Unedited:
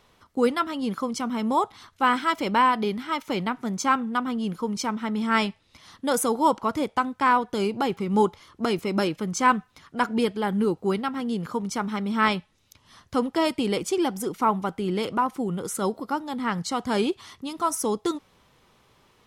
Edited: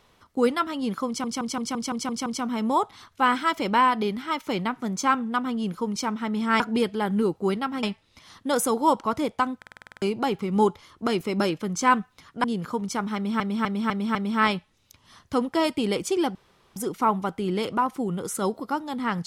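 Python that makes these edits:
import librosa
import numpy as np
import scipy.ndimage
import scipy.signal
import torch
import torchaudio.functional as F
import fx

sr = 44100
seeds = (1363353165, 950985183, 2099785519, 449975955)

y = fx.edit(x, sr, fx.stutter(start_s=1.07, slice_s=0.17, count=8),
    fx.stutter_over(start_s=7.15, slice_s=0.05, count=9),
    fx.move(start_s=10.02, length_s=1.23, to_s=5.41),
    fx.repeat(start_s=11.96, length_s=0.25, count=5),
    fx.insert_room_tone(at_s=14.16, length_s=0.41), tone=tone)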